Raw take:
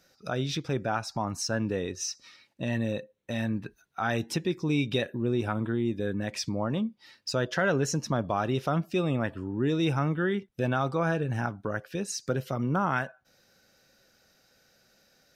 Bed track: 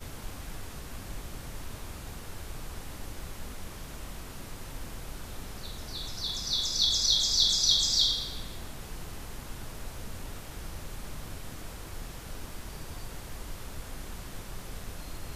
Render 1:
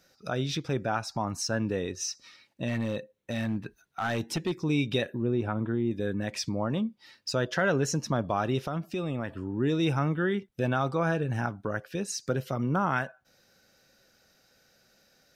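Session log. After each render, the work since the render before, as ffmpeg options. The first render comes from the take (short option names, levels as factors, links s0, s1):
-filter_complex "[0:a]asettb=1/sr,asplit=3[s0][s1][s2];[s0]atrim=end=2.684[s3];[s1]atrim=start=2.68:end=4.64,asetpts=PTS-STARTPTS,afade=t=in:d=0.004:c=qsin,afade=t=out:st=1.956:d=0.004:c=qsin,asoftclip=type=hard:threshold=0.0668[s4];[s2]atrim=start=4.636[s5];[s3][s4]acrossfade=d=0.004:c1=hsin:c2=qsin[s6];[s6][s5]acrossfade=d=0.004:c1=qsin:c2=hsin,asettb=1/sr,asplit=3[s7][s8][s9];[s7]atrim=end=5.224[s10];[s8]atrim=start=5.22:end=5.91,asetpts=PTS-STARTPTS,afade=t=in:d=0.004:c=qsin,afade=t=out:st=0.686:d=0.004:c=qsin,lowpass=f=1600:p=1[s11];[s9]atrim=start=5.906[s12];[s10][s11]acrossfade=d=0.004:c1=hsin:c2=qsin[s13];[s13][s12]acrossfade=d=0.004:c1=qsin:c2=hsin,asettb=1/sr,asplit=3[s14][s15][s16];[s14]atrim=end=8.634[s17];[s15]atrim=start=8.63:end=9.45,asetpts=PTS-STARTPTS,afade=t=in:d=0.004:c=qsin,afade=t=out:st=0.816:d=0.004:c=qsin,acompressor=threshold=0.0398:ratio=4:attack=3.2:release=140:knee=1:detection=peak[s18];[s16]atrim=start=9.446[s19];[s17][s18]acrossfade=d=0.004:c1=hsin:c2=qsin[s20];[s20][s19]acrossfade=d=0.004:c1=qsin:c2=hsin"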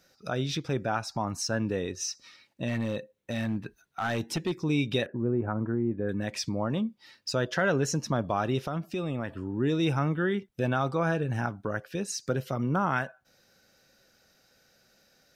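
-filter_complex "[0:a]asettb=1/sr,asplit=3[s0][s1][s2];[s0]atrim=end=5.064[s3];[s1]atrim=start=5.06:end=6.09,asetpts=PTS-STARTPTS,afade=t=in:d=0.004:c=qsin,afade=t=out:st=1.026:d=0.004:c=qsin,lowpass=f=1700:w=0.5412,lowpass=f=1700:w=1.3066[s4];[s2]atrim=start=6.086[s5];[s3][s4]acrossfade=d=0.004:c1=hsin:c2=qsin[s6];[s6][s5]acrossfade=d=0.004:c1=qsin:c2=hsin"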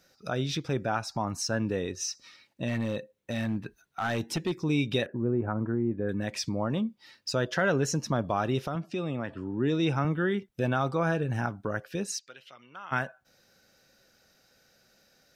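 -filter_complex "[0:a]asettb=1/sr,asplit=3[s0][s1][s2];[s0]atrim=end=8.754[s3];[s1]atrim=start=8.75:end=10.05,asetpts=PTS-STARTPTS,afade=t=in:d=0.004:c=qsin,afade=t=out:st=1.296:d=0.004:c=qsin,highpass=100,lowpass=6800[s4];[s2]atrim=start=10.046[s5];[s3][s4]acrossfade=d=0.004:c1=hsin:c2=qsin[s6];[s6][s5]acrossfade=d=0.004:c1=qsin:c2=hsin,asplit=3[s7][s8][s9];[s7]afade=t=out:st=12.18:d=0.02[s10];[s8]bandpass=f=2900:t=q:w=2.3,afade=t=in:st=12.18:d=0.02,afade=t=out:st=12.91:d=0.02[s11];[s9]afade=t=in:st=12.91:d=0.02[s12];[s10][s11][s12]amix=inputs=3:normalize=0"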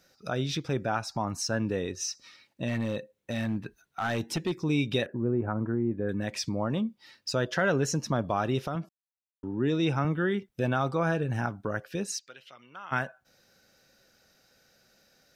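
-filter_complex "[0:a]asplit=3[s0][s1][s2];[s0]atrim=end=8.89,asetpts=PTS-STARTPTS,afade=t=out:st=8.886:d=0.004:c=hsin[s3];[s1]atrim=start=8.89:end=9.43,asetpts=PTS-STARTPTS,volume=0[s4];[s2]atrim=start=9.43,asetpts=PTS-STARTPTS,afade=t=in:d=0.004:c=hsin[s5];[s3][s4][s5]concat=n=3:v=0:a=1"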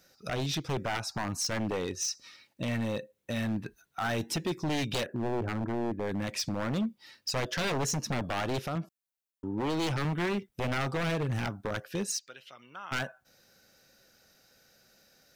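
-af "crystalizer=i=0.5:c=0,aeval=exprs='0.0562*(abs(mod(val(0)/0.0562+3,4)-2)-1)':c=same"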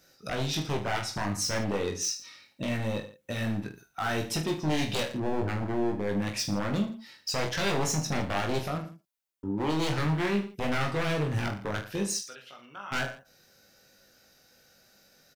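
-af "aecho=1:1:20|45|76.25|115.3|164.1:0.631|0.398|0.251|0.158|0.1"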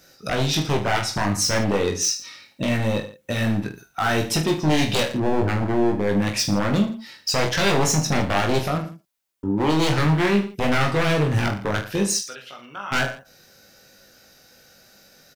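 -af "volume=2.66"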